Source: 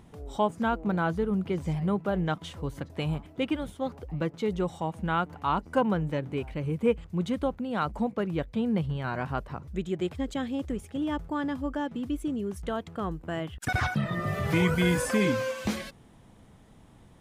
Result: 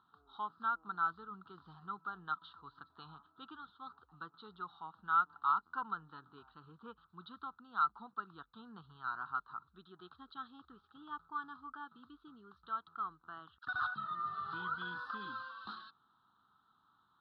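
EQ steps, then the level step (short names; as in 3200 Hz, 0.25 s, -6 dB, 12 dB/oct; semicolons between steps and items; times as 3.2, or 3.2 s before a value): double band-pass 2300 Hz, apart 1.6 oct; air absorption 410 m; fixed phaser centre 2100 Hz, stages 6; +6.0 dB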